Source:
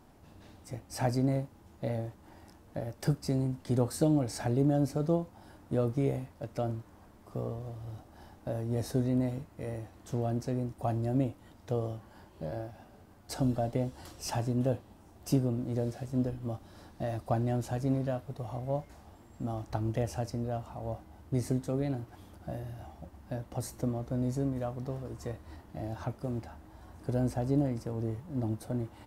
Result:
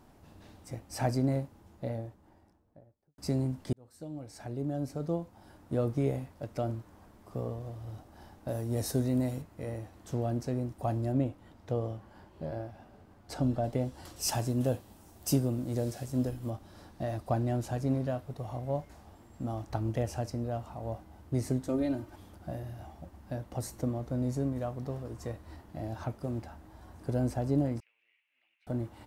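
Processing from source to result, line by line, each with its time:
0:01.34–0:03.18: fade out and dull
0:03.73–0:05.94: fade in
0:08.48–0:09.42: high-shelf EQ 5,400 Hz +11 dB
0:11.12–0:13.64: high-shelf EQ 5,400 Hz −8.5 dB
0:14.16–0:16.50: high-shelf EQ 4,800 Hz +11.5 dB
0:21.68–0:22.16: comb filter 3.3 ms, depth 79%
0:27.80–0:28.67: flat-topped band-pass 2,500 Hz, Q 3.7

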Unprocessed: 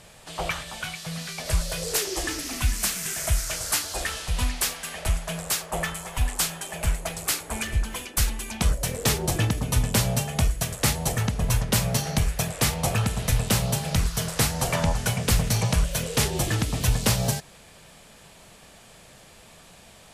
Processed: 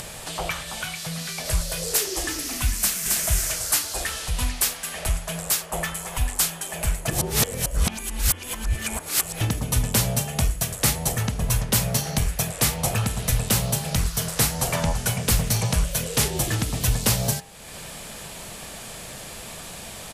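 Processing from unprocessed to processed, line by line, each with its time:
0:02.79–0:03.25: delay throw 270 ms, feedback 20%, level −2 dB
0:07.08–0:09.41: reverse
whole clip: high-shelf EQ 9,200 Hz +8 dB; hum removal 88.82 Hz, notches 38; upward compression, threshold −26 dBFS

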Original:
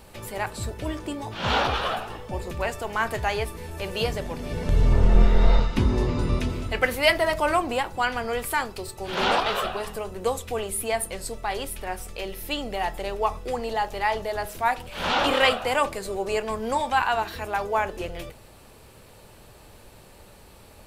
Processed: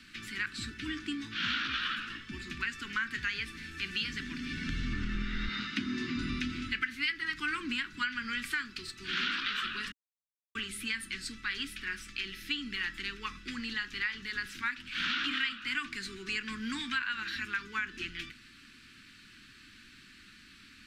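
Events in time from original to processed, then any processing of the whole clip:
0:05.48–0:06.16: high-pass filter 160 Hz
0:09.92–0:10.55: silence
whole clip: Chebyshev band-stop filter 270–1,500 Hz, order 3; three-way crossover with the lows and the highs turned down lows −19 dB, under 250 Hz, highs −24 dB, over 5,700 Hz; downward compressor 6 to 1, threshold −34 dBFS; level +4 dB

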